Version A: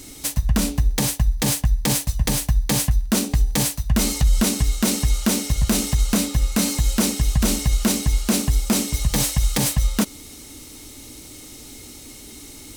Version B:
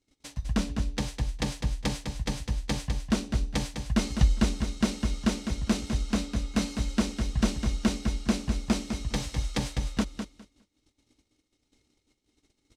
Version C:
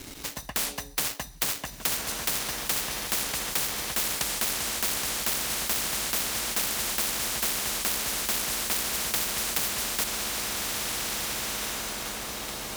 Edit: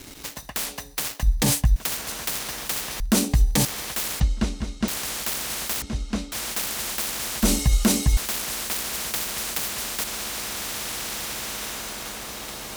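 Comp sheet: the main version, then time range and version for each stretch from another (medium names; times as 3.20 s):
C
1.23–1.76 s: from A
3.00–3.65 s: from A
4.20–4.88 s: from B
5.82–6.32 s: from B
7.43–8.17 s: from A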